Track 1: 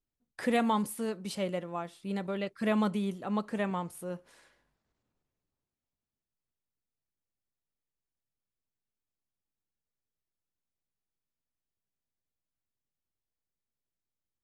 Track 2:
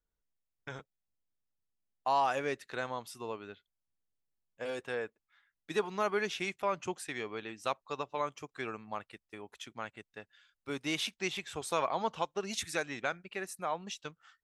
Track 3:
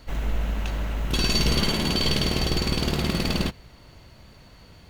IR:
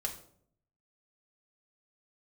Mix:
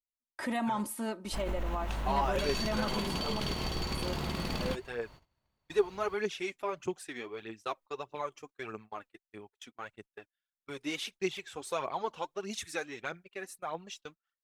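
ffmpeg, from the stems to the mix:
-filter_complex "[0:a]aecho=1:1:3.2:0.7,volume=-1.5dB,asplit=3[link_01][link_02][link_03];[link_01]atrim=end=3.4,asetpts=PTS-STARTPTS,afade=type=out:start_time=3.396:duration=0.004:curve=hsin[link_04];[link_02]atrim=start=3.4:end=3.95,asetpts=PTS-STARTPTS,volume=0[link_05];[link_03]atrim=start=3.95,asetpts=PTS-STARTPTS,afade=type=in:duration=0.004:curve=hsin[link_06];[link_04][link_05][link_06]concat=n=3:v=0:a=1[link_07];[1:a]adynamicequalizer=threshold=0.00224:dfrequency=390:dqfactor=4.4:tfrequency=390:tqfactor=4.4:attack=5:release=100:ratio=0.375:range=3:mode=boostabove:tftype=bell,aphaser=in_gain=1:out_gain=1:delay=4.2:decay=0.54:speed=1.6:type=triangular,volume=-4.5dB[link_08];[2:a]adelay=1250,volume=-7.5dB[link_09];[link_07][link_09]amix=inputs=2:normalize=0,equalizer=frequency=970:width=1.5:gain=6.5,alimiter=level_in=0.5dB:limit=-24dB:level=0:latency=1:release=49,volume=-0.5dB,volume=0dB[link_10];[link_08][link_10]amix=inputs=2:normalize=0,agate=range=-26dB:threshold=-50dB:ratio=16:detection=peak"

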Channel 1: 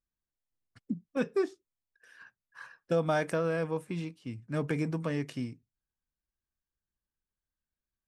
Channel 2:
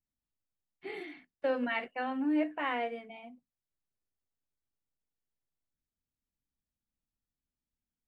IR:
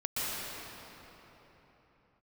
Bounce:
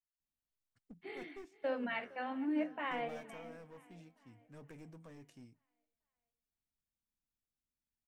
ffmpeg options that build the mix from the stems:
-filter_complex "[0:a]aeval=exprs='clip(val(0),-1,0.0266)':channel_layout=same,aexciter=amount=1.5:drive=7.1:freq=5900,volume=-20dB[link_01];[1:a]flanger=delay=4:depth=9.5:regen=-86:speed=1.3:shape=triangular,adelay=200,volume=-1dB,asplit=2[link_02][link_03];[link_03]volume=-21dB,aecho=0:1:461|922|1383|1844|2305|2766|3227:1|0.5|0.25|0.125|0.0625|0.0312|0.0156[link_04];[link_01][link_02][link_04]amix=inputs=3:normalize=0"

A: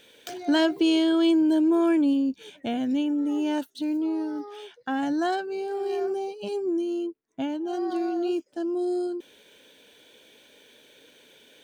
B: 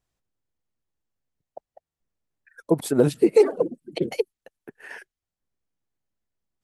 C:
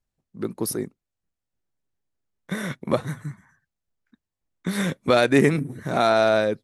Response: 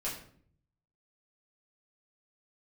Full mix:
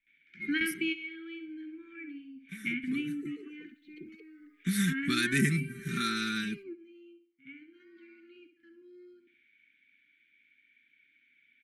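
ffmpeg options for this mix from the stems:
-filter_complex "[0:a]lowpass=frequency=2200:width_type=q:width=16,volume=-7.5dB,asplit=2[link_01][link_02];[link_02]volume=-14dB[link_03];[1:a]alimiter=limit=-14dB:level=0:latency=1:release=59,bandpass=frequency=580:width_type=q:width=2.7:csg=0,volume=-4.5dB[link_04];[2:a]highshelf=frequency=9200:gain=11.5,aecho=1:1:5.1:0.79,volume=-7.5dB,afade=type=in:start_time=3.39:duration=0.41:silence=0.223872,asplit=2[link_05][link_06];[link_06]apad=whole_len=513061[link_07];[link_01][link_07]sidechaingate=range=-29dB:threshold=-54dB:ratio=16:detection=peak[link_08];[link_03]aecho=0:1:67|134|201|268|335:1|0.35|0.122|0.0429|0.015[link_09];[link_08][link_04][link_05][link_09]amix=inputs=4:normalize=0,asuperstop=centerf=670:order=8:qfactor=0.59"

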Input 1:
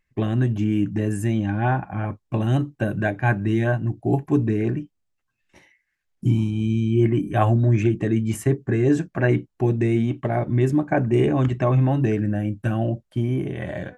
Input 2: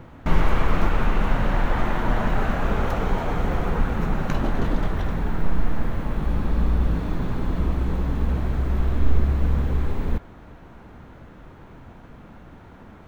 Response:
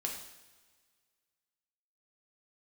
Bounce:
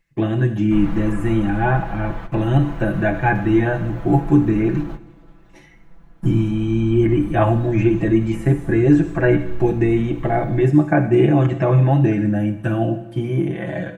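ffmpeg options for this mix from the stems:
-filter_complex "[0:a]bandreject=frequency=60:width_type=h:width=6,bandreject=frequency=120:width_type=h:width=6,volume=-2dB,asplit=3[link_01][link_02][link_03];[link_02]volume=-4dB[link_04];[1:a]adelay=450,volume=-13.5dB,asplit=2[link_05][link_06];[link_06]volume=-17dB[link_07];[link_03]apad=whole_len=596410[link_08];[link_05][link_08]sidechaingate=range=-33dB:threshold=-45dB:ratio=16:detection=peak[link_09];[2:a]atrim=start_sample=2205[link_10];[link_04][link_07]amix=inputs=2:normalize=0[link_11];[link_11][link_10]afir=irnorm=-1:irlink=0[link_12];[link_01][link_09][link_12]amix=inputs=3:normalize=0,acrossover=split=3000[link_13][link_14];[link_14]acompressor=threshold=-51dB:ratio=4:attack=1:release=60[link_15];[link_13][link_15]amix=inputs=2:normalize=0,aecho=1:1:6:0.96"

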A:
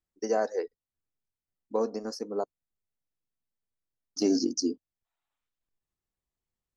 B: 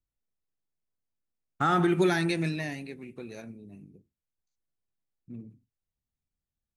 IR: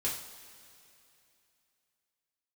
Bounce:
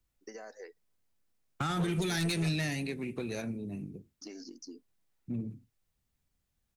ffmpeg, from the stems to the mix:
-filter_complex "[0:a]acrossover=split=1200|3600[link_01][link_02][link_03];[link_01]acompressor=threshold=-36dB:ratio=4[link_04];[link_02]acompressor=threshold=-46dB:ratio=4[link_05];[link_03]acompressor=threshold=-46dB:ratio=4[link_06];[link_04][link_05][link_06]amix=inputs=3:normalize=0,equalizer=frequency=2000:width_type=o:width=0.77:gain=7.5,acompressor=threshold=-41dB:ratio=2,adelay=50,volume=-5.5dB[link_07];[1:a]alimiter=limit=-19.5dB:level=0:latency=1:release=28,acrossover=split=140|3000[link_08][link_09][link_10];[link_09]acompressor=threshold=-42dB:ratio=6[link_11];[link_08][link_11][link_10]amix=inputs=3:normalize=0,aeval=exprs='0.0794*sin(PI/2*2.82*val(0)/0.0794)':channel_layout=same,volume=-4dB[link_12];[link_07][link_12]amix=inputs=2:normalize=0"

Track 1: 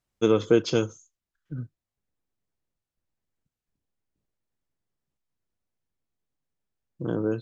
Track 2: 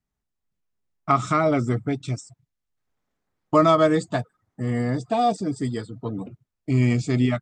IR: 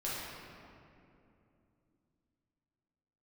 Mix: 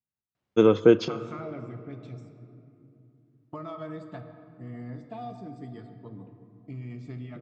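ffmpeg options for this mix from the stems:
-filter_complex "[0:a]lowpass=6200,highshelf=frequency=4300:gain=-11,adelay=350,volume=2.5dB,asplit=2[link_01][link_02];[link_02]volume=-21.5dB[link_03];[1:a]lowpass=3600,equalizer=frequency=100:width_type=o:width=1.2:gain=6,acompressor=threshold=-20dB:ratio=6,volume=-17.5dB,asplit=3[link_04][link_05][link_06];[link_05]volume=-8.5dB[link_07];[link_06]apad=whole_len=342373[link_08];[link_01][link_08]sidechaincompress=threshold=-58dB:ratio=8:attack=16:release=226[link_09];[2:a]atrim=start_sample=2205[link_10];[link_03][link_07]amix=inputs=2:normalize=0[link_11];[link_11][link_10]afir=irnorm=-1:irlink=0[link_12];[link_09][link_04][link_12]amix=inputs=3:normalize=0,highpass=100"

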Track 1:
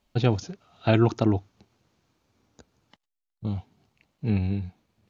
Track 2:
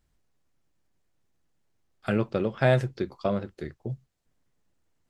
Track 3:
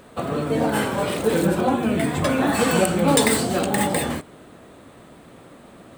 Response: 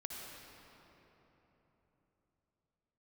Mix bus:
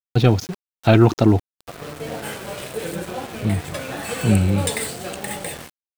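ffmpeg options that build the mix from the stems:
-filter_complex "[0:a]volume=2dB[link_01];[1:a]acompressor=threshold=-25dB:ratio=6,volume=-19.5dB[link_02];[2:a]equalizer=frequency=250:width_type=o:width=0.67:gain=-10,equalizer=frequency=1000:width_type=o:width=0.67:gain=-5,equalizer=frequency=2500:width_type=o:width=0.67:gain=3,equalizer=frequency=10000:width_type=o:width=0.67:gain=3,adelay=1500,volume=-12.5dB[link_03];[link_01][link_02][link_03]amix=inputs=3:normalize=0,acontrast=66,aeval=exprs='val(0)*gte(abs(val(0)),0.0237)':channel_layout=same"

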